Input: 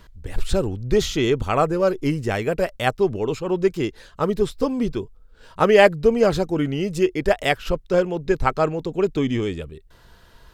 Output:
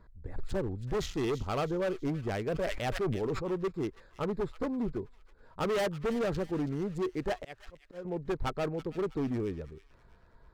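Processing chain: local Wiener filter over 15 samples; 7.36–8.05 s: slow attack 469 ms; overload inside the chain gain 19 dB; feedback echo behind a high-pass 325 ms, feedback 42%, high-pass 1.8 kHz, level -12 dB; 2.49–3.52 s: decay stretcher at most 39 dB/s; trim -8.5 dB

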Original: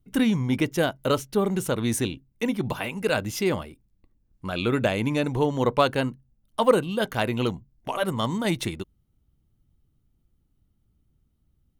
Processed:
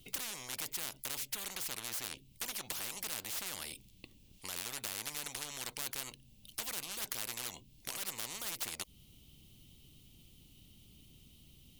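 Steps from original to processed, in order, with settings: resonant high shelf 2.1 kHz +11 dB, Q 3; in parallel at +2.5 dB: compression, threshold -32 dBFS, peak gain reduction 21 dB; on the sum: saturation -11 dBFS, distortion -12 dB; spectrum-flattening compressor 10:1; trim -5.5 dB

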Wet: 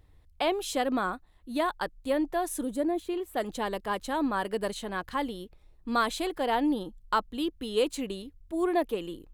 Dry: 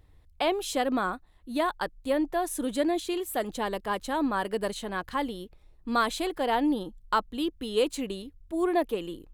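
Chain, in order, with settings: 2.62–3.36 s: peaking EQ 2.1 kHz -> 12 kHz -13 dB 2.5 oct; trim -1 dB

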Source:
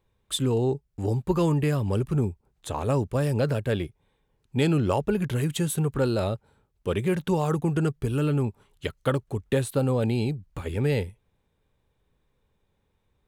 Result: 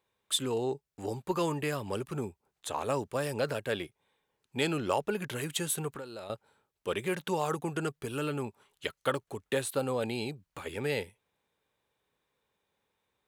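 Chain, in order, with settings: high-pass 710 Hz 6 dB/octave; 5.89–6.30 s: compression 5:1, threshold -41 dBFS, peak gain reduction 14.5 dB

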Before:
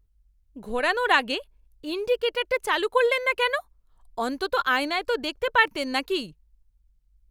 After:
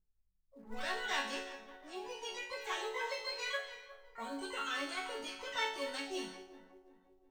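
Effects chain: backward echo that repeats 179 ms, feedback 66%, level -13 dB; level-controlled noise filter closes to 630 Hz, open at -21 dBFS; Chebyshev low-pass 8.3 kHz, order 4; harmony voices +12 st -6 dB; chord resonator F#3 minor, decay 0.54 s; in parallel at -9.5 dB: short-mantissa float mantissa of 2-bit; on the sum: trim +2.5 dB

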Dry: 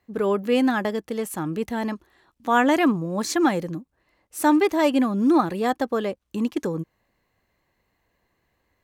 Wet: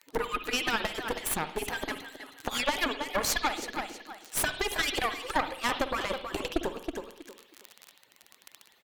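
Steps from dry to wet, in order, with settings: harmonic-percussive separation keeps percussive; feedback delay 320 ms, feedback 21%, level -12.5 dB; crackle 30 per s -42 dBFS; compression 6:1, threshold -31 dBFS, peak gain reduction 13.5 dB; high-pass 190 Hz 6 dB/octave; Chebyshev shaper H 4 -9 dB, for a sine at -20.5 dBFS; on a send at -10 dB: resonant high shelf 2.6 kHz +10.5 dB, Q 1.5 + reverberation, pre-delay 50 ms; on the sum: tape noise reduction on one side only encoder only; trim +4.5 dB

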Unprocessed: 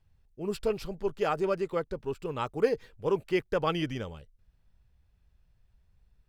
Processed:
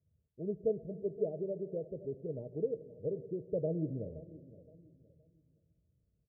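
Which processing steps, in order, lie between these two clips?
high-pass 68 Hz 24 dB/octave; 1.25–3.41 s: compression 2.5:1, threshold -30 dBFS, peak gain reduction 8 dB; rippled Chebyshev low-pass 660 Hz, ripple 3 dB; feedback delay 519 ms, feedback 30%, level -18 dB; reverberation RT60 2.0 s, pre-delay 7 ms, DRR 13 dB; trim -3 dB

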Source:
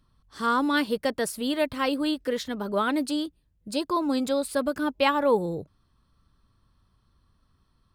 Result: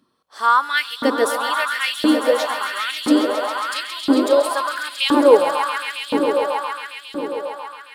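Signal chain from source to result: echo with a slow build-up 136 ms, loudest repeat 5, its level -10 dB; LFO high-pass saw up 0.98 Hz 250–3700 Hz; trim +4.5 dB

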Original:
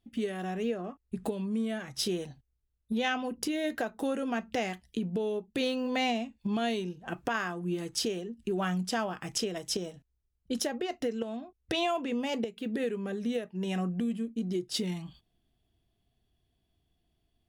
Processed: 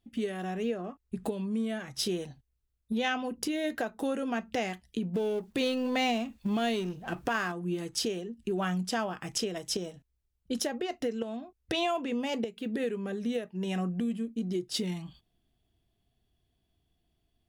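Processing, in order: 5.14–7.52 s: companding laws mixed up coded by mu

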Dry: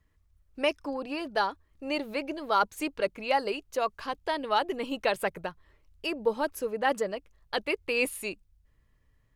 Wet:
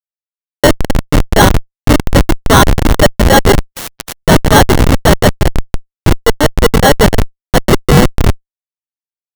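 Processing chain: 0.82–1.36 s: echo throw 340 ms, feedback 30%, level -8.5 dB; echo whose repeats swap between lows and highs 166 ms, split 1 kHz, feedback 79%, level -8 dB; saturation -22.5 dBFS, distortion -13 dB; 6.06–6.70 s: high-pass 250 Hz 6 dB/octave; 7.65–8.25 s: transient shaper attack +8 dB, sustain -11 dB; sample-and-hold 18×; Schmitt trigger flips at -28.5 dBFS; loudness maximiser +31.5 dB; 3.72–4.23 s: spectrum-flattening compressor 4:1; trim -1 dB

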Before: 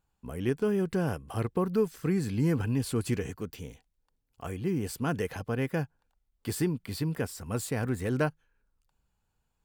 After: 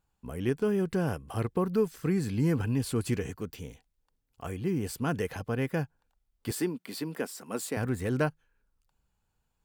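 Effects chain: 6.51–7.77 s: high-pass 210 Hz 24 dB/octave

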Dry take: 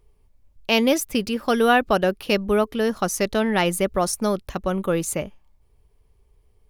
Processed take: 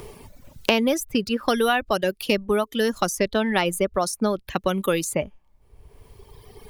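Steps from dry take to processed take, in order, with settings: reverb removal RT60 1.6 s; three bands compressed up and down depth 100%; trim -1 dB

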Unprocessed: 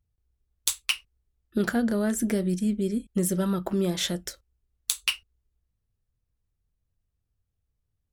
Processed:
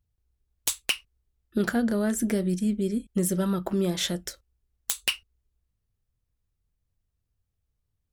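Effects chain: integer overflow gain 11 dB

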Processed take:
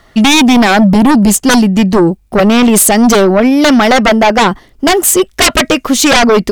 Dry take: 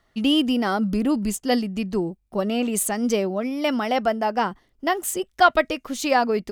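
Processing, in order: sine folder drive 18 dB, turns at -2 dBFS; trim -1.5 dB

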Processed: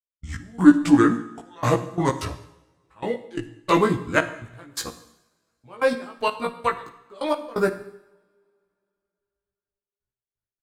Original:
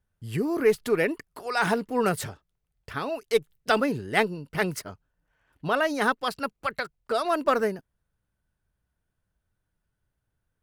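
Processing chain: pitch bend over the whole clip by -7 st ending unshifted; gate -45 dBFS, range -21 dB; trance gate "..x..x.xxx.x" 129 bpm -24 dB; doubling 17 ms -2.5 dB; two-slope reverb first 0.81 s, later 2.8 s, from -27 dB, DRR 9.5 dB; trim +4.5 dB

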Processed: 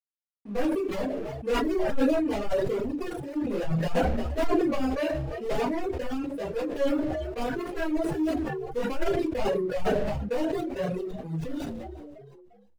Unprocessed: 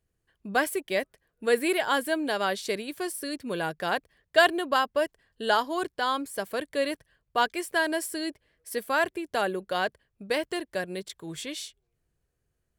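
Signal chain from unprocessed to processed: median filter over 41 samples; simulated room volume 33 m³, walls mixed, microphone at 1.8 m; chorus voices 2, 0.69 Hz, delay 11 ms, depth 3.8 ms; hard clipper -10 dBFS, distortion -18 dB; waveshaping leveller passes 1; hysteresis with a dead band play -37 dBFS; doubling 38 ms -13 dB; frequency-shifting echo 349 ms, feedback 42%, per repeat +67 Hz, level -21.5 dB; reverb removal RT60 1.2 s; decay stretcher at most 25 dB/s; trim -8.5 dB

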